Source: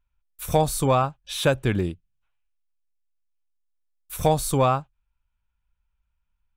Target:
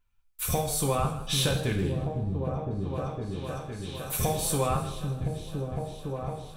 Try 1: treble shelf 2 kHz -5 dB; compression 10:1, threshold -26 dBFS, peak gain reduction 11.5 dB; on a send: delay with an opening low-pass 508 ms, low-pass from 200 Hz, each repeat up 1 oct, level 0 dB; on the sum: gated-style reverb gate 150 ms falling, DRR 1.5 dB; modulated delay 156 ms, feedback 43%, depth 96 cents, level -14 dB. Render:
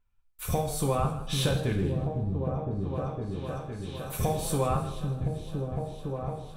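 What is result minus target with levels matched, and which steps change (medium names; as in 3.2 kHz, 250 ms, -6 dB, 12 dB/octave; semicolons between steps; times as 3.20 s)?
4 kHz band -3.5 dB
change: treble shelf 2 kHz +3 dB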